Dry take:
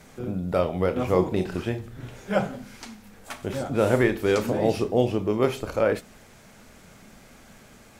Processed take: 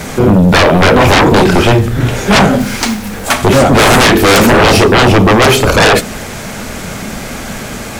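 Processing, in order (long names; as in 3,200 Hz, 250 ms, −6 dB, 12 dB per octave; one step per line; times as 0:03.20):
one-sided soft clipper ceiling −13 dBFS
0:02.60–0:03.31: floating-point word with a short mantissa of 2 bits
sine wavefolder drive 17 dB, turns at −10 dBFS
level +7 dB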